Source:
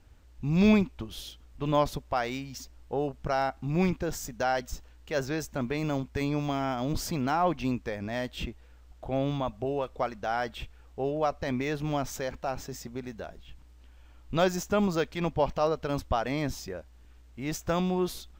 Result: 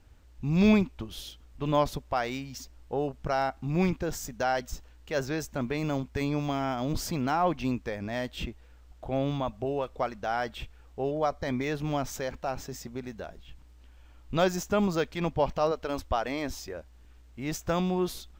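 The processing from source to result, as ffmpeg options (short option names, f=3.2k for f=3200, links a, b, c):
-filter_complex "[0:a]asettb=1/sr,asplit=3[a][b][c];[a]atrim=end=11.114[d];[b]atrim=start=11.11:end=11.64,asetpts=PTS-STARTPTS,afade=t=in:d=0.004:c=qsin,afade=t=out:st=0.526:d=0.004:c=qsin,asuperstop=centerf=2700:order=12:qfactor=6.5[e];[c]atrim=start=11.636[f];[d][e]acrossfade=d=0.004:c1=hsin:c2=qsin[g];[g][f]acrossfade=d=0.004:c1=qsin:c2=hsin,asettb=1/sr,asplit=3[h][i][j];[h]atrim=end=15.714[k];[i]atrim=start=15.71:end=16.77,asetpts=PTS-STARTPTS,afade=t=in:d=0.004:c=qsin,afade=t=out:st=1.056:d=0.004:c=qsin,equalizer=f=150:t=o:w=0.77:g=-12.5[l];[j]atrim=start=16.766[m];[k][l]acrossfade=d=0.004:c1=hsin:c2=qsin[n];[n][m]acrossfade=d=0.004:c1=qsin:c2=hsin"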